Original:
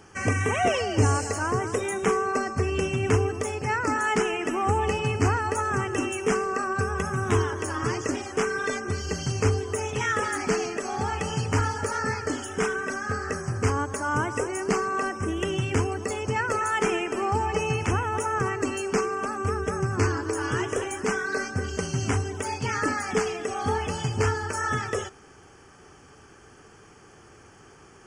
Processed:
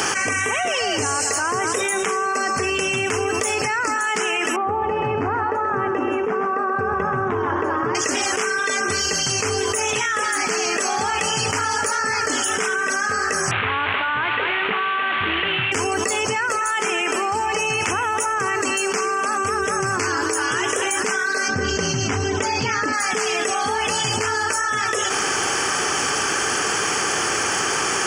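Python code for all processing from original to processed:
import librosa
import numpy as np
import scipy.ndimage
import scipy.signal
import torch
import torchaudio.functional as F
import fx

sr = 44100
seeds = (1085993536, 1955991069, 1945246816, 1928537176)

y = fx.chain(x, sr, fx.lowpass(hz=1000.0, slope=12),
    fx.echo_single(ms=130, db=-8.5), at=(4.56, 7.95))
y = fx.chain(y, sr, fx.delta_mod(bps=16000, step_db=-28.0),
    fx.peak_eq(hz=380.0, db=-8.5, octaves=2.2), at=(13.51, 15.72))
y = fx.chain(y, sr, fx.lowpass(hz=6400.0, slope=24),
    fx.low_shelf(hz=390.0, db=11.0), at=(21.48, 22.93))
y = fx.highpass(y, sr, hz=530.0, slope=6)
y = fx.tilt_shelf(y, sr, db=-3.5, hz=1500.0)
y = fx.env_flatten(y, sr, amount_pct=100)
y = y * librosa.db_to_amplitude(2.0)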